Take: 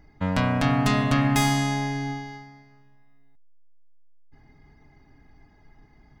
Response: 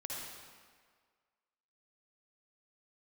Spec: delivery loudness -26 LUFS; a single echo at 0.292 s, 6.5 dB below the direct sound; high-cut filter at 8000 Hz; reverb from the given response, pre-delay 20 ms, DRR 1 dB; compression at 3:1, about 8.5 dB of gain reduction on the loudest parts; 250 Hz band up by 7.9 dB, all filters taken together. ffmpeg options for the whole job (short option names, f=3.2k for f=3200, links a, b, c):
-filter_complex "[0:a]lowpass=8k,equalizer=f=250:t=o:g=9,acompressor=threshold=-24dB:ratio=3,aecho=1:1:292:0.473,asplit=2[a][b];[1:a]atrim=start_sample=2205,adelay=20[c];[b][c]afir=irnorm=-1:irlink=0,volume=-1.5dB[d];[a][d]amix=inputs=2:normalize=0,volume=-1dB"